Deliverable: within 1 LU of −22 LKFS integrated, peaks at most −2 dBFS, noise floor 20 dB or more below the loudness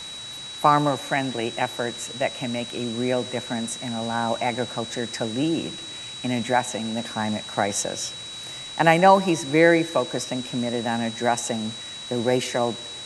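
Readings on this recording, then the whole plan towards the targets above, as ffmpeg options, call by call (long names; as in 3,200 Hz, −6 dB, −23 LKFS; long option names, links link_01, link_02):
interfering tone 3,900 Hz; level of the tone −35 dBFS; background noise floor −37 dBFS; target noise floor −44 dBFS; integrated loudness −24.0 LKFS; sample peak −2.0 dBFS; target loudness −22.0 LKFS
→ -af "bandreject=frequency=3900:width=30"
-af "afftdn=noise_reduction=7:noise_floor=-37"
-af "volume=2dB,alimiter=limit=-2dB:level=0:latency=1"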